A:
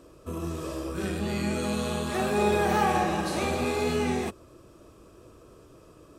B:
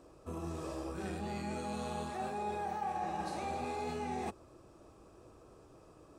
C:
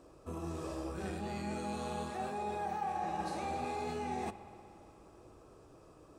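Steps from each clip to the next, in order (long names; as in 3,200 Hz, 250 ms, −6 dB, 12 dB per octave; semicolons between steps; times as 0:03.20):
thirty-one-band graphic EQ 800 Hz +11 dB, 3,150 Hz −4 dB, 12,500 Hz −10 dB; reversed playback; downward compressor 6 to 1, threshold −29 dBFS, peak gain reduction 16 dB; reversed playback; level −6.5 dB
spring reverb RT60 2.8 s, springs 59 ms, chirp 40 ms, DRR 12 dB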